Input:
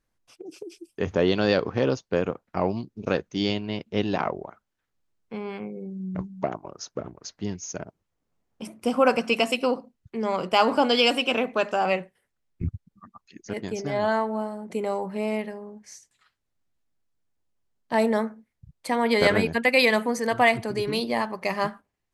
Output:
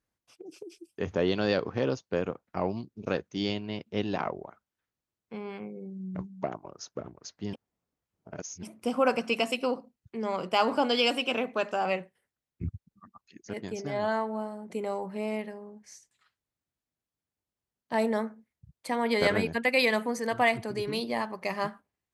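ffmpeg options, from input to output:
ffmpeg -i in.wav -filter_complex "[0:a]asplit=3[link_01][link_02][link_03];[link_01]atrim=end=7.532[link_04];[link_02]atrim=start=7.528:end=8.632,asetpts=PTS-STARTPTS,areverse[link_05];[link_03]atrim=start=8.628[link_06];[link_04][link_05]acrossfade=duration=0.004:curve1=hsin:curve2=hsin[link_07];[link_07][link_06]acrossfade=duration=0.004:curve1=hsin:curve2=hsin,highpass=48,volume=-5dB" out.wav

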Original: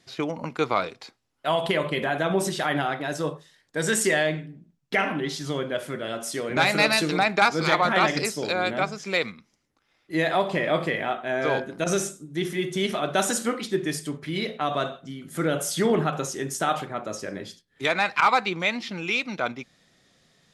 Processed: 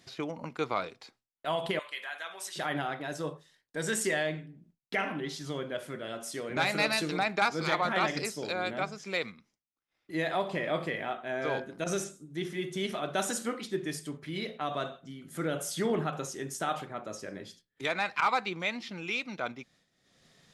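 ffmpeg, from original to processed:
ffmpeg -i in.wav -filter_complex "[0:a]asettb=1/sr,asplit=3[link_01][link_02][link_03];[link_01]atrim=end=1.794[link_04];[link_02]atrim=start=1.79:end=2.56,asetpts=PTS-STARTPTS,afade=type=in:duration=0.004:curve=qsin,afade=type=out:start_time=0.766:duration=0.004:curve=qsin,highpass=1400[link_05];[link_03]atrim=start=2.556[link_06];[link_04][link_05]acrossfade=duration=0.004:curve1=hsin:curve2=qsin[link_07];[link_07][link_06]acrossfade=duration=0.004:curve1=qsin:curve2=hsin,asettb=1/sr,asplit=3[link_08][link_09][link_10];[link_08]atrim=end=12.044[link_11];[link_09]atrim=start=12.04:end=12.65,asetpts=PTS-STARTPTS,afade=type=in:duration=0.004:curve=qsin,afade=type=out:start_time=0.606:duration=0.004:curve=qsin,acrossover=split=7400[link_12][link_13];[link_13]acompressor=threshold=-51dB:ratio=4:attack=1:release=60[link_14];[link_12][link_14]amix=inputs=2:normalize=0[link_15];[link_10]atrim=start=12.646[link_16];[link_11][link_15]acrossfade=duration=0.004:curve1=hsin:curve2=qsin[link_17];[link_17][link_16]acrossfade=duration=0.004:curve1=qsin:curve2=hsin,agate=range=-33dB:threshold=-52dB:ratio=3:detection=peak,acompressor=mode=upward:threshold=-36dB:ratio=2.5,volume=-7.5dB" out.wav

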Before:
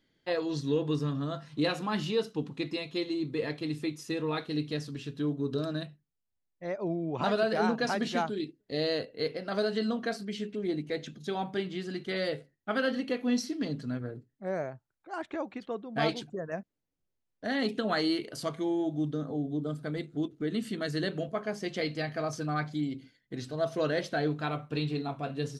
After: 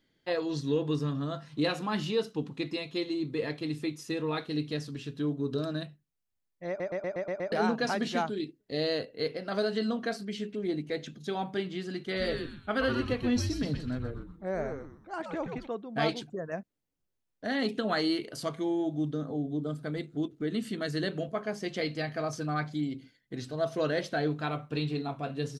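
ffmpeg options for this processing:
ffmpeg -i in.wav -filter_complex "[0:a]asplit=3[link_01][link_02][link_03];[link_01]afade=type=out:start_time=12.15:duration=0.02[link_04];[link_02]asplit=5[link_05][link_06][link_07][link_08][link_09];[link_06]adelay=124,afreqshift=-150,volume=-5.5dB[link_10];[link_07]adelay=248,afreqshift=-300,volume=-14.9dB[link_11];[link_08]adelay=372,afreqshift=-450,volume=-24.2dB[link_12];[link_09]adelay=496,afreqshift=-600,volume=-33.6dB[link_13];[link_05][link_10][link_11][link_12][link_13]amix=inputs=5:normalize=0,afade=type=in:start_time=12.15:duration=0.02,afade=type=out:start_time=15.66:duration=0.02[link_14];[link_03]afade=type=in:start_time=15.66:duration=0.02[link_15];[link_04][link_14][link_15]amix=inputs=3:normalize=0,asplit=8[link_16][link_17][link_18][link_19][link_20][link_21][link_22][link_23];[link_16]atrim=end=6.802[link_24];[link_17]atrim=start=6.678:end=6.802[link_25];[link_18]atrim=start=6.678:end=6.802[link_26];[link_19]atrim=start=6.678:end=6.802[link_27];[link_20]atrim=start=6.678:end=6.802[link_28];[link_21]atrim=start=6.678:end=6.802[link_29];[link_22]atrim=start=6.678:end=6.802[link_30];[link_23]atrim=start=7.518[link_31];[link_24][link_25]acrossfade=duration=0.004:curve1=hsin:curve2=hsin[link_32];[link_32][link_26]acrossfade=duration=0.004:curve1=hsin:curve2=hsin[link_33];[link_33][link_27]acrossfade=duration=0.004:curve1=hsin:curve2=hsin[link_34];[link_34][link_28]acrossfade=duration=0.004:curve1=hsin:curve2=hsin[link_35];[link_35][link_29]acrossfade=duration=0.004:curve1=hsin:curve2=hsin[link_36];[link_36][link_30]acrossfade=duration=0.004:curve1=hsin:curve2=hsin[link_37];[link_37][link_31]acrossfade=duration=0.004:curve1=hsin:curve2=hsin" out.wav

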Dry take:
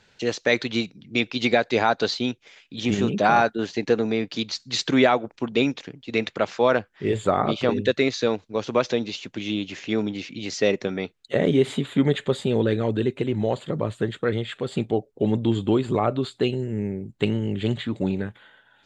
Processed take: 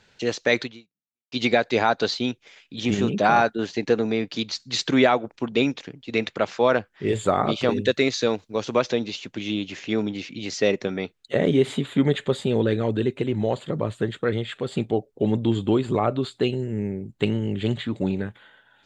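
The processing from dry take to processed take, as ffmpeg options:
ffmpeg -i in.wav -filter_complex "[0:a]asettb=1/sr,asplit=3[link_01][link_02][link_03];[link_01]atrim=end=7.084[link_04];[link_02]atrim=start=7.08:end=8.8,asetpts=PTS-STARTPTS,afade=type=in:duration=0.004:curve=qsin,afade=type=out:start_time=1.716:duration=0.004:curve=qsin,highshelf=frequency=6100:gain=8[link_05];[link_03]atrim=start=8.796[link_06];[link_04][link_05]acrossfade=duration=0.004:curve1=hsin:curve2=qsin[link_07];[link_07][link_06]acrossfade=duration=0.004:curve1=qsin:curve2=hsin,asplit=2[link_08][link_09];[link_08]atrim=end=1.32,asetpts=PTS-STARTPTS,afade=type=out:start_time=0.63:duration=0.69:curve=exp[link_10];[link_09]atrim=start=1.32,asetpts=PTS-STARTPTS,afade=type=in:duration=0.004:curve=hsin[link_11];[link_10][link_11]concat=n=2:v=0:a=1" out.wav

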